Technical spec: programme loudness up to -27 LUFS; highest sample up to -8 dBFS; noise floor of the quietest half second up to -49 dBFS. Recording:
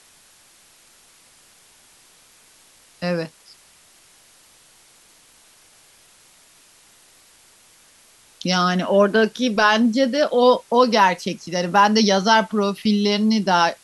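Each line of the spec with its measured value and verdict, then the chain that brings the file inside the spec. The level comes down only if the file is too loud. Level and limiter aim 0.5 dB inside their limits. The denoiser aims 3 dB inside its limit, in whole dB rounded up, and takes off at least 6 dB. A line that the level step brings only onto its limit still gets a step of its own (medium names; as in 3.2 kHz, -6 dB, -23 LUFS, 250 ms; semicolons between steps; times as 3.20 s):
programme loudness -18.0 LUFS: fail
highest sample -2.5 dBFS: fail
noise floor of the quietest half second -53 dBFS: pass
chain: trim -9.5 dB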